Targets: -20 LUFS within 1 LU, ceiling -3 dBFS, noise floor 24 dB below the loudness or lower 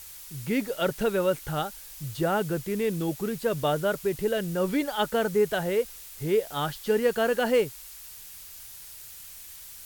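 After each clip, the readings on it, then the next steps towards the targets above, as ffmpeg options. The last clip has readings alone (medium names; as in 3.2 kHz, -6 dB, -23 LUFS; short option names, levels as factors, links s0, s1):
noise floor -45 dBFS; noise floor target -52 dBFS; loudness -27.5 LUFS; peak level -11.5 dBFS; loudness target -20.0 LUFS
-> -af "afftdn=nr=7:nf=-45"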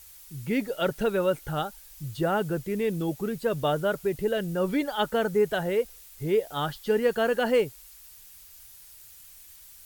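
noise floor -50 dBFS; noise floor target -52 dBFS
-> -af "afftdn=nr=6:nf=-50"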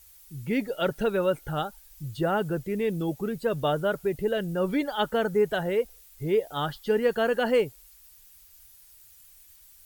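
noise floor -54 dBFS; loudness -27.5 LUFS; peak level -12.0 dBFS; loudness target -20.0 LUFS
-> -af "volume=2.37"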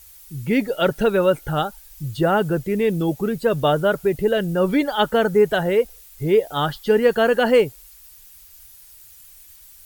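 loudness -20.0 LUFS; peak level -4.5 dBFS; noise floor -47 dBFS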